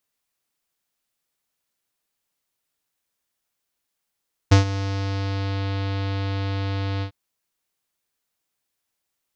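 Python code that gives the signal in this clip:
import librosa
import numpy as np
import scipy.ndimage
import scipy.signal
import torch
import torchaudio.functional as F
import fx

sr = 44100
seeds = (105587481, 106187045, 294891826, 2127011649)

y = fx.sub_voice(sr, note=43, wave='square', cutoff_hz=4300.0, q=1.7, env_oct=0.5, env_s=1.14, attack_ms=12.0, decay_s=0.12, sustain_db=-15.0, release_s=0.09, note_s=2.51, slope=24)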